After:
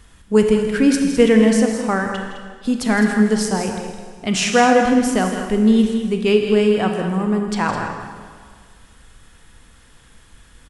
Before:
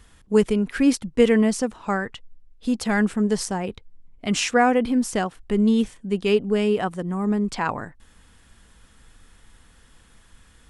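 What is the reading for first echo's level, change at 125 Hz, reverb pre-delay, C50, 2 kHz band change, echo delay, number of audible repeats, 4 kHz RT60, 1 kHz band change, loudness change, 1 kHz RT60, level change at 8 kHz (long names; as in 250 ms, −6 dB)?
−11.5 dB, +5.0 dB, 23 ms, 4.0 dB, +5.5 dB, 162 ms, 2, 1.7 s, +5.5 dB, +5.0 dB, 1.8 s, +5.0 dB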